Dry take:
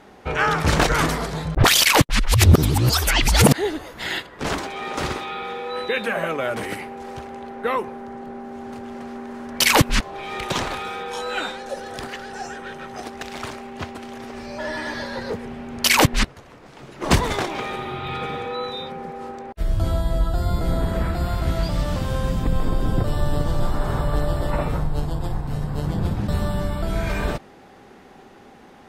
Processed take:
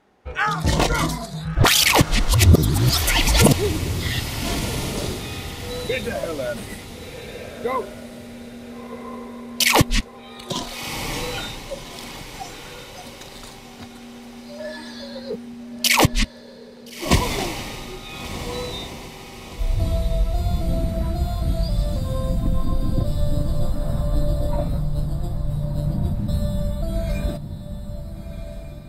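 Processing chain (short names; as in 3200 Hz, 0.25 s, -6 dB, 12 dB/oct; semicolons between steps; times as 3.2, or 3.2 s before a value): spectral noise reduction 13 dB; diffused feedback echo 1.383 s, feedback 42%, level -9.5 dB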